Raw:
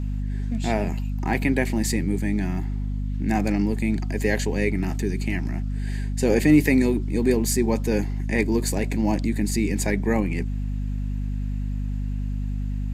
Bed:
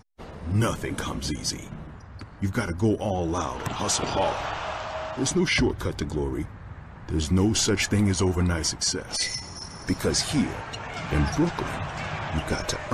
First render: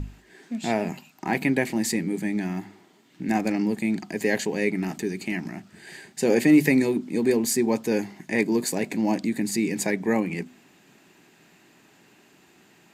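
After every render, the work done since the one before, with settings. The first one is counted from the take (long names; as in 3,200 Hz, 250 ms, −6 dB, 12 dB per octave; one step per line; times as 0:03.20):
mains-hum notches 50/100/150/200/250 Hz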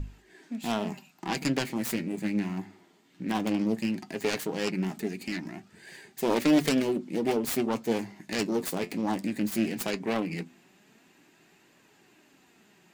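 phase distortion by the signal itself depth 0.51 ms
flanger 0.17 Hz, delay 1.7 ms, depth 9.9 ms, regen +60%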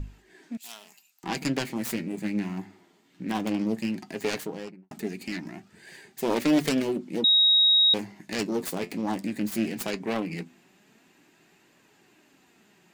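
0:00.57–0:01.24: first difference
0:04.31–0:04.91: fade out and dull
0:07.24–0:07.94: beep over 3,790 Hz −16 dBFS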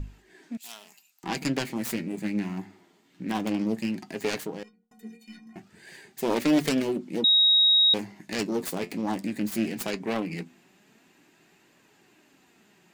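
0:04.63–0:05.56: stiff-string resonator 220 Hz, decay 0.34 s, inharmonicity 0.03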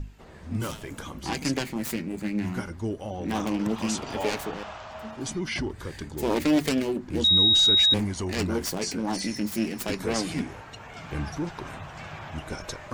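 mix in bed −8 dB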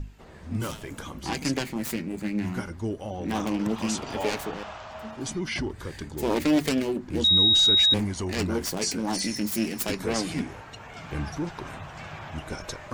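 0:08.77–0:09.92: high-shelf EQ 4,400 Hz +6.5 dB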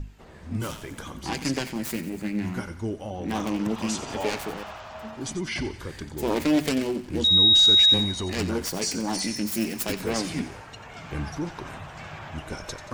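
feedback echo with a high-pass in the loop 90 ms, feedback 55%, high-pass 1,100 Hz, level −11.5 dB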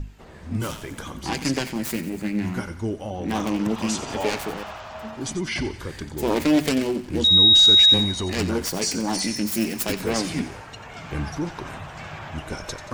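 level +3 dB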